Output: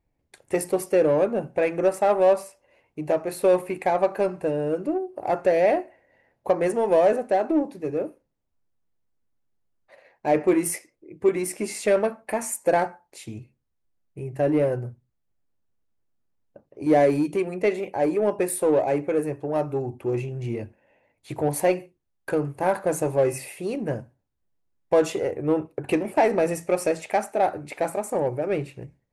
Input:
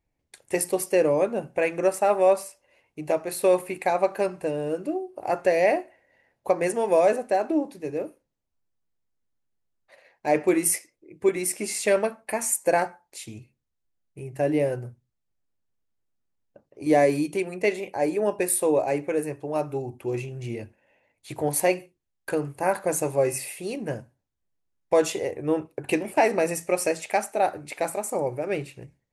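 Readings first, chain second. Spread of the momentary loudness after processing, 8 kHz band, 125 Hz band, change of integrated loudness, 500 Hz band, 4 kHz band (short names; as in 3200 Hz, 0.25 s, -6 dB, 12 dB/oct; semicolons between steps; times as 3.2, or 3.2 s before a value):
12 LU, -5.5 dB, +3.5 dB, +1.0 dB, +1.5 dB, -3.0 dB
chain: high shelf 2200 Hz -9.5 dB; in parallel at -4 dB: soft clip -26 dBFS, distortion -7 dB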